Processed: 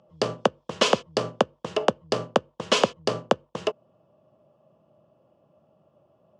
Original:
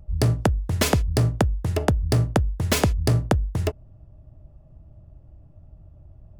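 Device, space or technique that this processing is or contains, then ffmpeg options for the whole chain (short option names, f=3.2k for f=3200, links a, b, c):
television speaker: -af "highpass=f=210:w=0.5412,highpass=f=210:w=1.3066,equalizer=f=290:t=q:w=4:g=-9,equalizer=f=520:t=q:w=4:g=8,equalizer=f=1.1k:t=q:w=4:g=8,equalizer=f=2k:t=q:w=4:g=-5,equalizer=f=3k:t=q:w=4:g=9,lowpass=f=6.7k:w=0.5412,lowpass=f=6.7k:w=1.3066"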